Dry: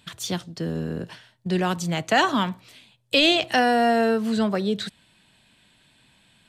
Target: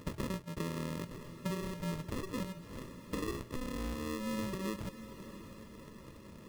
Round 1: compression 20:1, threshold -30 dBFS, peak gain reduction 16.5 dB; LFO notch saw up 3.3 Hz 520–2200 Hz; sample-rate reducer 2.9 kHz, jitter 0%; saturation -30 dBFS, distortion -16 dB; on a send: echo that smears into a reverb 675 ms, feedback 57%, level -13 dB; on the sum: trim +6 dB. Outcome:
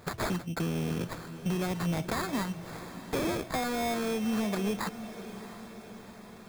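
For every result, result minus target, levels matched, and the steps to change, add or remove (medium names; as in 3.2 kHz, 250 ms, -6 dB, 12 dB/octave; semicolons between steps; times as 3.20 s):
compression: peak gain reduction -9 dB; sample-rate reducer: distortion -10 dB
change: compression 20:1, threshold -39.5 dBFS, peak gain reduction 25.5 dB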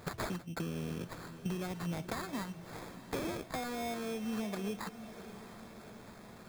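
sample-rate reducer: distortion -10 dB
change: sample-rate reducer 760 Hz, jitter 0%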